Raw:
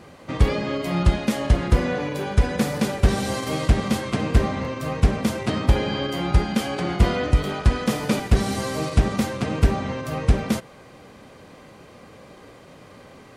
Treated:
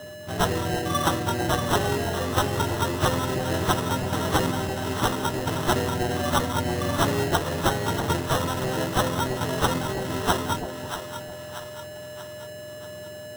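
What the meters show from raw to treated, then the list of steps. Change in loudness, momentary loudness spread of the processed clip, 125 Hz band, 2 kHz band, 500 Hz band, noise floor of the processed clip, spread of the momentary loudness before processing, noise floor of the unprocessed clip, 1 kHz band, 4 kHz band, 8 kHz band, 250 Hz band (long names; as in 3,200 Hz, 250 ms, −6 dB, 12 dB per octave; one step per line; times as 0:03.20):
−2.5 dB, 14 LU, −5.0 dB, +1.0 dB, 0.0 dB, −39 dBFS, 5 LU, −47 dBFS, +4.0 dB, +2.0 dB, +4.0 dB, −4.0 dB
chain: frequency axis turned over on the octave scale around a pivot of 450 Hz
steady tone 11,000 Hz −38 dBFS
decimation without filtering 19×
echo with a time of its own for lows and highs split 800 Hz, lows 333 ms, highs 635 ms, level −8.5 dB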